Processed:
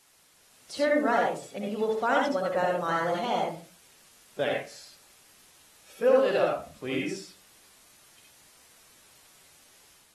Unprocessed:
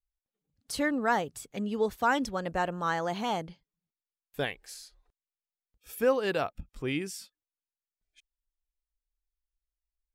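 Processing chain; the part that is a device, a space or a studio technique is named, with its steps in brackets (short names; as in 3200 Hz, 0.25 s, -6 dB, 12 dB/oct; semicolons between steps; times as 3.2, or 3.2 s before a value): filmed off a television (BPF 180–7000 Hz; bell 580 Hz +10 dB 0.3 oct; reverb RT60 0.35 s, pre-delay 63 ms, DRR -1.5 dB; white noise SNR 26 dB; AGC gain up to 4.5 dB; gain -7 dB; AAC 32 kbps 44100 Hz)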